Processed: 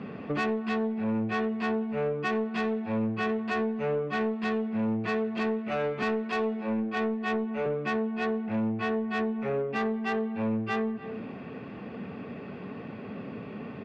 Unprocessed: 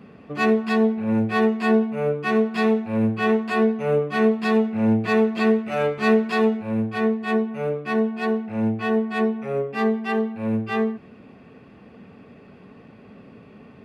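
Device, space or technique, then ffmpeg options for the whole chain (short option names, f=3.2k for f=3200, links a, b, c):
AM radio: -filter_complex "[0:a]asettb=1/sr,asplit=3[a][b][c];[a]atrim=end=6.024[d];[b]atrim=start=6.02:end=7.66,asetpts=PTS-STARTPTS,afade=t=in:d=0.004:c=qsin,afade=t=out:st=1.636:d=0.004:c=qsin,highpass=f=190:w=0.5412,highpass=f=190:w=1.3066[e];[c]atrim=start=7.656[f];[d][e]acrossfade=d=0.004:c1=hsin:c2=qsin[g];[g][f]acrossfade=d=0.004:c1=qsin:c2=hsin,highpass=100,lowpass=3.8k,asplit=2[h][i];[i]adelay=291.5,volume=-22dB,highshelf=f=4k:g=-6.56[j];[h][j]amix=inputs=2:normalize=0,acompressor=threshold=-32dB:ratio=6,asoftclip=type=tanh:threshold=-29.5dB,volume=7dB"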